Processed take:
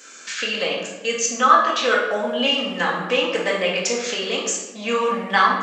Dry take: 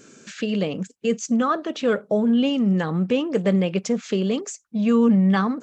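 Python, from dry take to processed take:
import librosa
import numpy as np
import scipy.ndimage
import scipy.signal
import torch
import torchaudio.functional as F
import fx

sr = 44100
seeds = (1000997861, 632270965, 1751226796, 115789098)

y = scipy.signal.sosfilt(scipy.signal.butter(2, 900.0, 'highpass', fs=sr, output='sos'), x)
y = fx.room_shoebox(y, sr, seeds[0], volume_m3=530.0, walls='mixed', distance_m=2.0)
y = y * 10.0 ** (7.0 / 20.0)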